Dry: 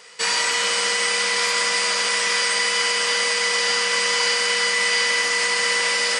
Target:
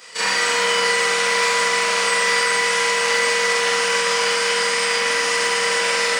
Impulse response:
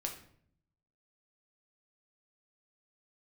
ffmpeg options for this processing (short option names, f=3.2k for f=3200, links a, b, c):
-filter_complex "[0:a]afftfilt=real='re':imag='-im':win_size=4096:overlap=0.75,acrossover=split=180|470|2600[a][b][c][d];[d]alimiter=level_in=0.5dB:limit=-24dB:level=0:latency=1:release=265,volume=-0.5dB[e];[a][b][c][e]amix=inputs=4:normalize=0,acrusher=bits=8:mode=log:mix=0:aa=0.000001,volume=8.5dB"